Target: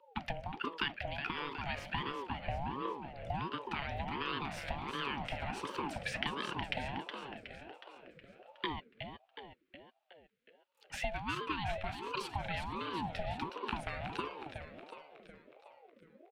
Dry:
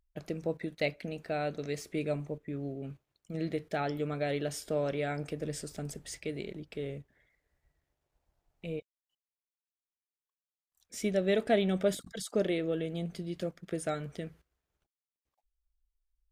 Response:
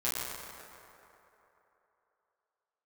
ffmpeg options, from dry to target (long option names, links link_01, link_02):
-filter_complex "[0:a]acompressor=threshold=-44dB:ratio=10,equalizer=frequency=150:width=1.2:gain=-8,bandreject=frequency=510:width=12,asplit=2[link_01][link_02];[link_02]aeval=exprs='val(0)*gte(abs(val(0)),0.00178)':channel_layout=same,volume=-12dB[link_03];[link_01][link_03]amix=inputs=2:normalize=0,firequalizer=gain_entry='entry(200,0);entry(650,-26);entry(1800,3);entry(6100,-22)':delay=0.05:min_phase=1,afreqshift=140,asplit=8[link_04][link_05][link_06][link_07][link_08][link_09][link_10][link_11];[link_05]adelay=367,afreqshift=-58,volume=-7.5dB[link_12];[link_06]adelay=734,afreqshift=-116,volume=-12.4dB[link_13];[link_07]adelay=1101,afreqshift=-174,volume=-17.3dB[link_14];[link_08]adelay=1468,afreqshift=-232,volume=-22.1dB[link_15];[link_09]adelay=1835,afreqshift=-290,volume=-27dB[link_16];[link_10]adelay=2202,afreqshift=-348,volume=-31.9dB[link_17];[link_11]adelay=2569,afreqshift=-406,volume=-36.8dB[link_18];[link_04][link_12][link_13][link_14][link_15][link_16][link_17][link_18]amix=inputs=8:normalize=0,aeval=exprs='val(0)*sin(2*PI*530*n/s+530*0.4/1.4*sin(2*PI*1.4*n/s))':channel_layout=same,volume=18dB"